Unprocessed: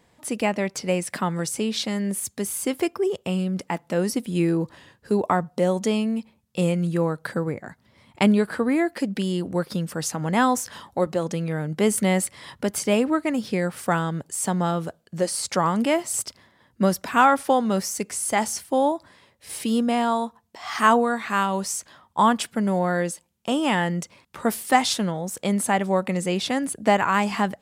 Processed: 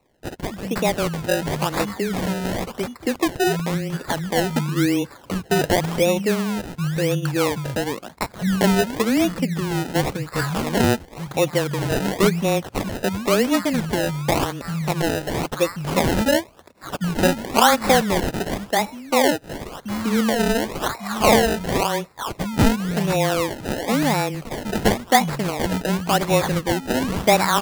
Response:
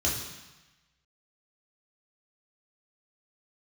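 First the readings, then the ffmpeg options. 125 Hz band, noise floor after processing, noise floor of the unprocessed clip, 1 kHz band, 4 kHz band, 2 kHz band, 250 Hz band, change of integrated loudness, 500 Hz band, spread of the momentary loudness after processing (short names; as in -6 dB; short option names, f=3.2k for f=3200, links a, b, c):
+4.5 dB, -45 dBFS, -63 dBFS, +1.0 dB, +5.5 dB, +3.5 dB, +2.0 dB, +2.5 dB, +3.5 dB, 9 LU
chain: -filter_complex "[0:a]afreqshift=-17,acrossover=split=180|1500[a][b][c];[a]adelay=200[d];[b]adelay=400[e];[d][e][c]amix=inputs=3:normalize=0,acrusher=samples=27:mix=1:aa=0.000001:lfo=1:lforange=27:lforate=0.94,volume=4dB"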